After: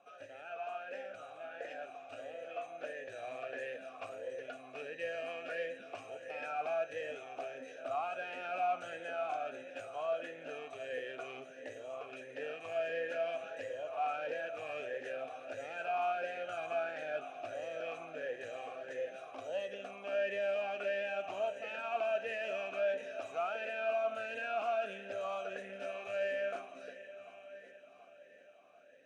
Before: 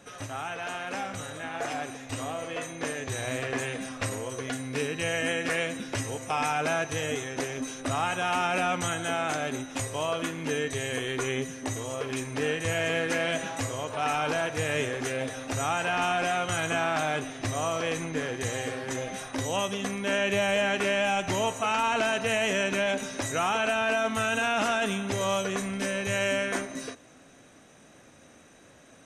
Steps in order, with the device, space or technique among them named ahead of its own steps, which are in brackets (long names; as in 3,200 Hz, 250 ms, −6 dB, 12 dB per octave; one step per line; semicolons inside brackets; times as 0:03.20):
echo machine with several playback heads 371 ms, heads all three, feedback 47%, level −19.5 dB
talk box (tube saturation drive 22 dB, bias 0.4; formant filter swept between two vowels a-e 1.5 Hz)
level +1 dB